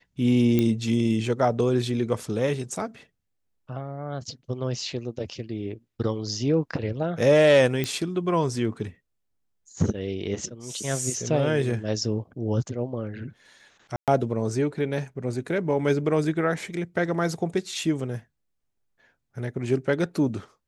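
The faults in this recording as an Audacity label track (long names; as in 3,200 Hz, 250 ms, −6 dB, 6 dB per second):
0.590000	0.590000	click −11 dBFS
7.840000	7.840000	click −13 dBFS
13.960000	14.080000	drop-out 117 ms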